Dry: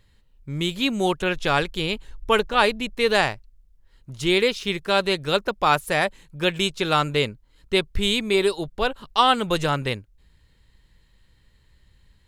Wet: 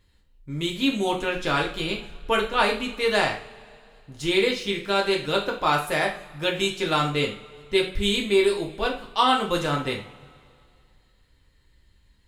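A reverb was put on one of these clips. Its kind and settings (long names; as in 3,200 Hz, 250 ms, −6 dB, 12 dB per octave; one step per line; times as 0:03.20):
coupled-rooms reverb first 0.39 s, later 2.4 s, from −22 dB, DRR −0.5 dB
level −5 dB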